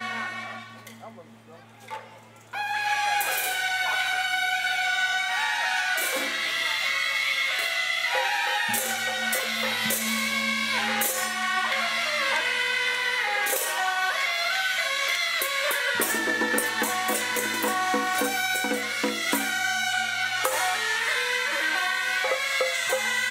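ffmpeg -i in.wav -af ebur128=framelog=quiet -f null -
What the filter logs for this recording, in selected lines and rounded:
Integrated loudness:
  I:         -24.3 LUFS
  Threshold: -34.7 LUFS
Loudness range:
  LRA:         1.6 LU
  Threshold: -44.5 LUFS
  LRA low:   -25.5 LUFS
  LRA high:  -23.9 LUFS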